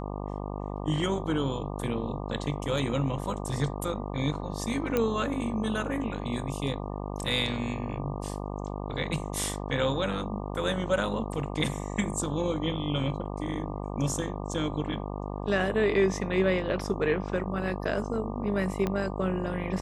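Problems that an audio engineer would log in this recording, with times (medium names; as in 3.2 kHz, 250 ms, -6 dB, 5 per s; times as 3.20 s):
buzz 50 Hz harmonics 24 -35 dBFS
4.97 s: pop -13 dBFS
18.87 s: pop -16 dBFS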